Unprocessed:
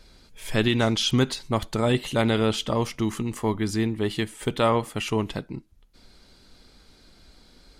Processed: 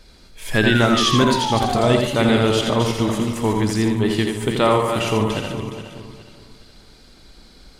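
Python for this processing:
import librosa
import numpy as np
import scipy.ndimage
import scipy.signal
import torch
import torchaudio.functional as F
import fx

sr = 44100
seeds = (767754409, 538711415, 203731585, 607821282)

p1 = fx.reverse_delay_fb(x, sr, ms=208, feedback_pct=55, wet_db=-7)
p2 = fx.spec_paint(p1, sr, seeds[0], shape='fall', start_s=0.53, length_s=1.52, low_hz=570.0, high_hz=1700.0, level_db=-29.0)
p3 = p2 + fx.echo_multitap(p2, sr, ms=(84, 145, 606), db=(-5.5, -14.5, -18.5), dry=0)
y = F.gain(torch.from_numpy(p3), 4.0).numpy()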